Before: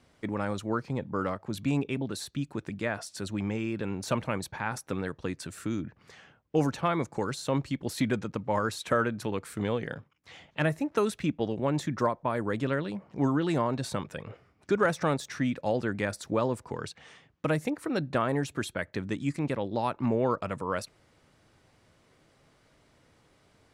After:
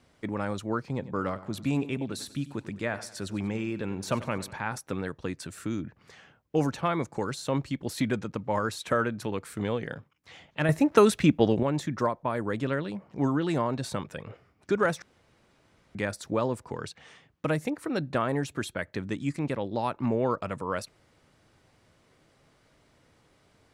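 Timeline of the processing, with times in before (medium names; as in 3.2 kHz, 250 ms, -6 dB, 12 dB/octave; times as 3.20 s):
0.84–4.53 s: feedback delay 95 ms, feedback 47%, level -16 dB
10.69–11.63 s: gain +8 dB
15.02–15.95 s: room tone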